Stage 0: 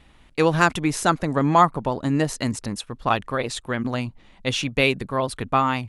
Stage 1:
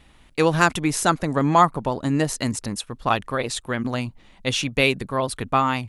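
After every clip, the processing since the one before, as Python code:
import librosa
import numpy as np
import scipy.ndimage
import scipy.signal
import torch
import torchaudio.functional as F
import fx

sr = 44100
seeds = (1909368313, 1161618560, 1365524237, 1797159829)

y = fx.high_shelf(x, sr, hz=6400.0, db=6.0)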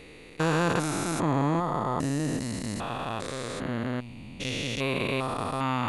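y = fx.spec_steps(x, sr, hold_ms=400)
y = y * librosa.db_to_amplitude(-1.5)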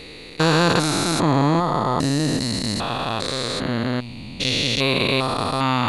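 y = fx.peak_eq(x, sr, hz=4200.0, db=12.5, octaves=0.45)
y = y * librosa.db_to_amplitude(7.5)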